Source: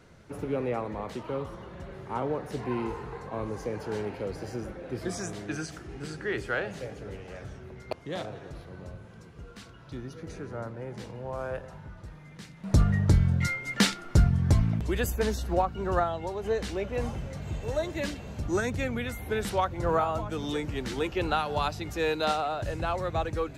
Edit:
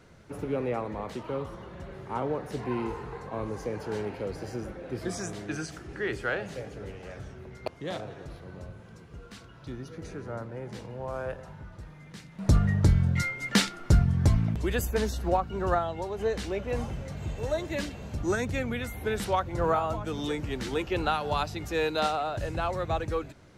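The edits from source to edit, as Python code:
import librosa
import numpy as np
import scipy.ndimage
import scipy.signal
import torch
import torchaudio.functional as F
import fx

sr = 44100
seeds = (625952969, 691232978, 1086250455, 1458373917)

y = fx.edit(x, sr, fx.cut(start_s=5.93, length_s=0.25), tone=tone)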